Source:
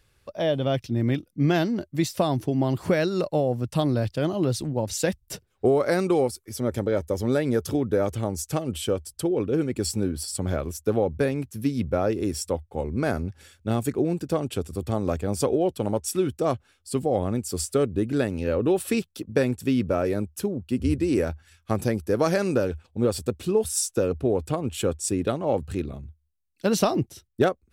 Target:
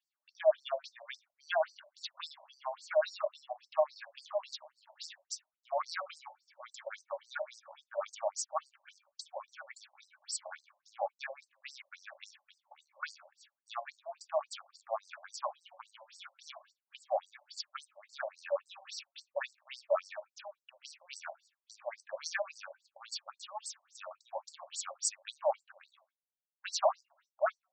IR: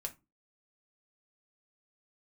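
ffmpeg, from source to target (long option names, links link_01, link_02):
-filter_complex "[0:a]agate=range=-18dB:threshold=-45dB:ratio=16:detection=peak,asplit=2[link_01][link_02];[link_02]asubboost=boost=7:cutoff=94[link_03];[1:a]atrim=start_sample=2205[link_04];[link_03][link_04]afir=irnorm=-1:irlink=0,volume=2.5dB[link_05];[link_01][link_05]amix=inputs=2:normalize=0,afftfilt=real='re*between(b*sr/1024,730*pow(6200/730,0.5+0.5*sin(2*PI*3.6*pts/sr))/1.41,730*pow(6200/730,0.5+0.5*sin(2*PI*3.6*pts/sr))*1.41)':imag='im*between(b*sr/1024,730*pow(6200/730,0.5+0.5*sin(2*PI*3.6*pts/sr))/1.41,730*pow(6200/730,0.5+0.5*sin(2*PI*3.6*pts/sr))*1.41)':win_size=1024:overlap=0.75,volume=-7dB"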